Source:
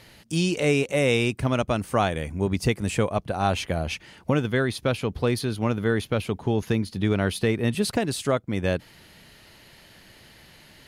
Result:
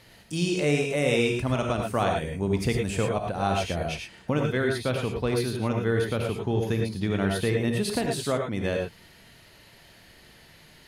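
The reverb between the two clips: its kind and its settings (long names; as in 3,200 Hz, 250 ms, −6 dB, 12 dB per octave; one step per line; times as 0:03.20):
reverb whose tail is shaped and stops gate 130 ms rising, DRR 1.5 dB
level −4 dB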